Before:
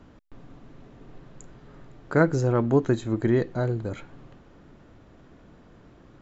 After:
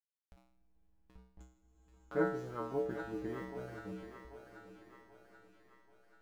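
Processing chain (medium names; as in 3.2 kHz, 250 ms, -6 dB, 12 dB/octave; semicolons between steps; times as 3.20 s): send-on-delta sampling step -36 dBFS; low-pass 2 kHz 6 dB/octave; gate -50 dBFS, range -15 dB; Schroeder reverb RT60 4 s, combs from 27 ms, DRR 18 dB; upward compressor, threshold -31 dBFS; feedback comb 63 Hz, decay 0.55 s, harmonics odd, mix 100%; thinning echo 784 ms, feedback 56%, high-pass 500 Hz, level -7 dB; endings held to a fixed fall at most 140 dB/s; trim +1.5 dB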